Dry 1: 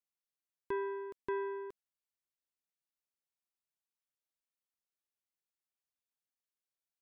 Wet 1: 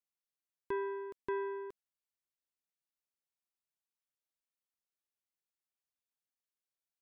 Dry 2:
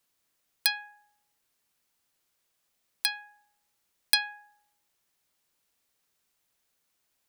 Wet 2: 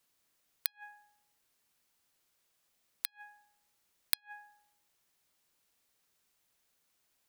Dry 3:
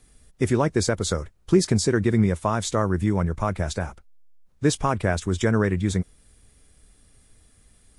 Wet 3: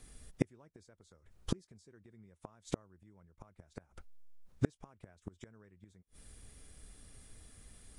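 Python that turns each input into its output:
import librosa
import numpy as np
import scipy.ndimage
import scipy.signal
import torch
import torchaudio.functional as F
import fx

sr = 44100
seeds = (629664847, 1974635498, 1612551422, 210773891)

y = fx.gate_flip(x, sr, shuts_db=-16.0, range_db=-39)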